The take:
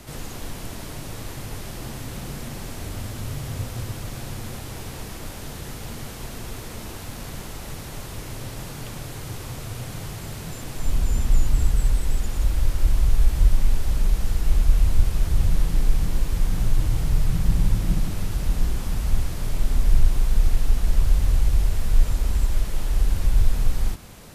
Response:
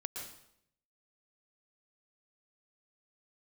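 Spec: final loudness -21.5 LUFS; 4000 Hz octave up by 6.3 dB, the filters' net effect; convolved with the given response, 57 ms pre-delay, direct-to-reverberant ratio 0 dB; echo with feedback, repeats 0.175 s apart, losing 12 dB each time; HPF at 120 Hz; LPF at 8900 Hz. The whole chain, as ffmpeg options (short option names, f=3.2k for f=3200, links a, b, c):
-filter_complex "[0:a]highpass=120,lowpass=8.9k,equalizer=f=4k:t=o:g=8,aecho=1:1:175|350|525:0.251|0.0628|0.0157,asplit=2[a][b];[1:a]atrim=start_sample=2205,adelay=57[c];[b][c]afir=irnorm=-1:irlink=0,volume=0.5dB[d];[a][d]amix=inputs=2:normalize=0,volume=9dB"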